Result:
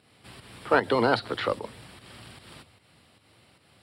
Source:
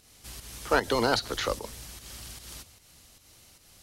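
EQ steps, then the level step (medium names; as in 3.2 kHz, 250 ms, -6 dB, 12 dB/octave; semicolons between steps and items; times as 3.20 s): boxcar filter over 7 samples; high-pass 93 Hz 24 dB/octave; +3.0 dB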